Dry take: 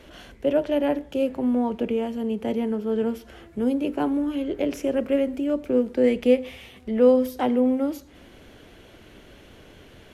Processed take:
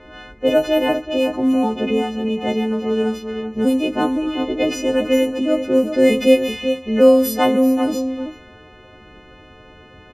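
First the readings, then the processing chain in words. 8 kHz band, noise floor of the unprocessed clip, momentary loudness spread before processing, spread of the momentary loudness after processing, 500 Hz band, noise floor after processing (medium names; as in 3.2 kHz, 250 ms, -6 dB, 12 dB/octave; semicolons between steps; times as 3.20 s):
no reading, -50 dBFS, 9 LU, 9 LU, +6.0 dB, -45 dBFS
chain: partials quantised in pitch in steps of 3 st; echo from a far wall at 66 m, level -8 dB; level-controlled noise filter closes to 1.5 kHz, open at -17 dBFS; trim +6 dB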